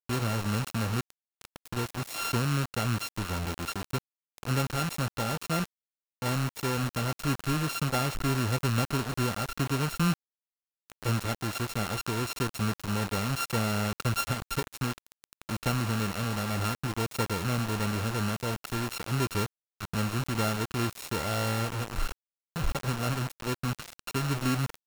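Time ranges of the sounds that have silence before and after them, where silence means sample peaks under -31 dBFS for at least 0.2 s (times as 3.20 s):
1.41–3.98 s
4.38–5.65 s
6.22–10.14 s
10.90–19.46 s
19.81–22.12 s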